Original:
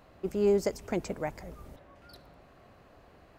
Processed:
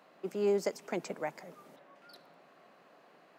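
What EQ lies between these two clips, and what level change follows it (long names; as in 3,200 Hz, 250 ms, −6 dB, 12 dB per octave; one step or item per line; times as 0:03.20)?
Butterworth high-pass 150 Hz 48 dB per octave
low-shelf EQ 340 Hz −9.5 dB
high-shelf EQ 6,500 Hz −5 dB
0.0 dB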